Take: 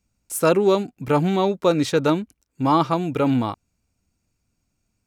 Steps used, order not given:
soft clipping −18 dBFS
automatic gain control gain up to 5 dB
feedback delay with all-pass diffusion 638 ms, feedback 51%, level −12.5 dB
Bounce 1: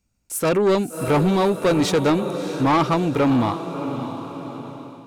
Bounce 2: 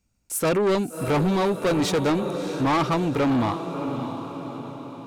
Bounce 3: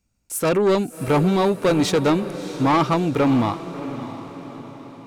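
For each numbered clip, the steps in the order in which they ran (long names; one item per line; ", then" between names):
feedback delay with all-pass diffusion, then soft clipping, then automatic gain control
automatic gain control, then feedback delay with all-pass diffusion, then soft clipping
soft clipping, then automatic gain control, then feedback delay with all-pass diffusion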